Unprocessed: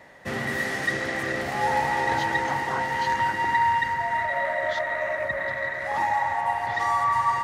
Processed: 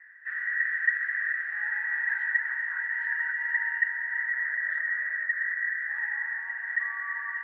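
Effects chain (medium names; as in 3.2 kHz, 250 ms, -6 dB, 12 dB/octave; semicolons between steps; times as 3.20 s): Butterworth band-pass 1.7 kHz, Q 5.3; trim +6 dB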